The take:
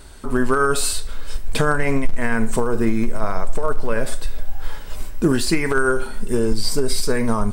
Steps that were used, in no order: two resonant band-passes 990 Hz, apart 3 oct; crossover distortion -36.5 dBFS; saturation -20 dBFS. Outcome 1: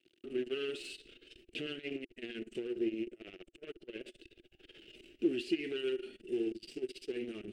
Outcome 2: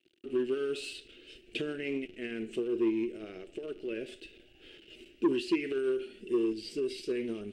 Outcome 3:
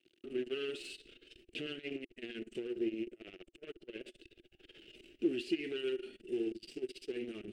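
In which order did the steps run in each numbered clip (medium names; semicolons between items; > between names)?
crossover distortion > saturation > two resonant band-passes; crossover distortion > two resonant band-passes > saturation; saturation > crossover distortion > two resonant band-passes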